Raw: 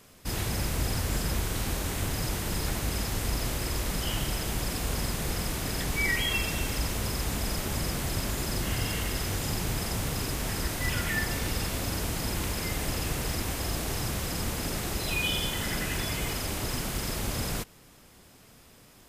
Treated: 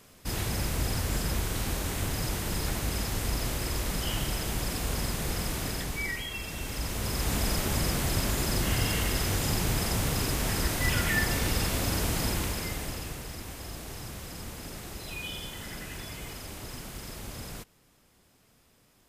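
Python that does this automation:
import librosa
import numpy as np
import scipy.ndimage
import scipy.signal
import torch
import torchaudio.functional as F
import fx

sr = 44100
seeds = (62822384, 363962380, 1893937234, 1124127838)

y = fx.gain(x, sr, db=fx.line((5.64, -0.5), (6.31, -9.0), (7.35, 2.5), (12.24, 2.5), (13.27, -9.0)))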